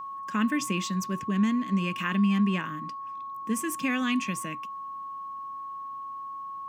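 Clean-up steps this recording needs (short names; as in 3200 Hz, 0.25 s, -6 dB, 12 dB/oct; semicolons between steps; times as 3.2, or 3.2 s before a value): notch 1100 Hz, Q 30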